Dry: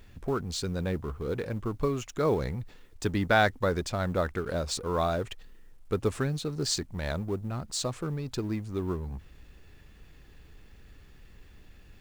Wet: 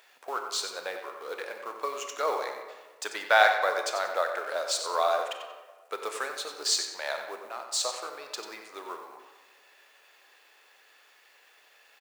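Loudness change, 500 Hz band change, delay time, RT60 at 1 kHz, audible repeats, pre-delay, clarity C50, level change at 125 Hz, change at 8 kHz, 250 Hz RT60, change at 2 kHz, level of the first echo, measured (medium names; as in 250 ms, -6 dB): +1.0 dB, -1.0 dB, 92 ms, 1.4 s, 1, 25 ms, 5.0 dB, under -40 dB, +4.5 dB, 1.6 s, +5.0 dB, -10.0 dB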